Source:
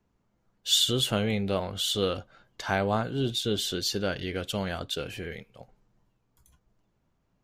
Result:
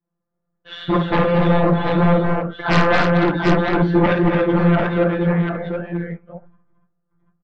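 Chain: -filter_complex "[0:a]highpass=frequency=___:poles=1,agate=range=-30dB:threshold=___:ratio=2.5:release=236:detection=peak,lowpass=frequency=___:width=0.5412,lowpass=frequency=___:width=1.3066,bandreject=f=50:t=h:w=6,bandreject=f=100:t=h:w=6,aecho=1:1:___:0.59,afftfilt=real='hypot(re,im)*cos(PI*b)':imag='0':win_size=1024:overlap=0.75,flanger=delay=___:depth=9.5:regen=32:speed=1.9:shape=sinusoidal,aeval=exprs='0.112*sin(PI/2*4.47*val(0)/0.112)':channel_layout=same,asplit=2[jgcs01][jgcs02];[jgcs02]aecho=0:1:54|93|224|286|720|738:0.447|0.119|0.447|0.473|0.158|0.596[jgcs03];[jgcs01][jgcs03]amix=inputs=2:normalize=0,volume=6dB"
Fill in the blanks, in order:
56, -55dB, 1500, 1500, 5.3, 6.2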